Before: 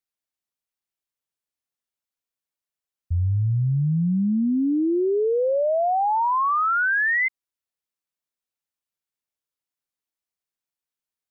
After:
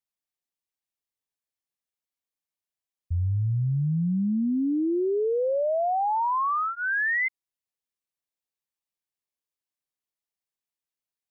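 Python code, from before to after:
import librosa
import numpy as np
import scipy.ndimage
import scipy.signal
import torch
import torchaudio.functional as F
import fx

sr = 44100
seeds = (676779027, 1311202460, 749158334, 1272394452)

y = fx.notch(x, sr, hz=1400.0, q=7.7)
y = F.gain(torch.from_numpy(y), -3.5).numpy()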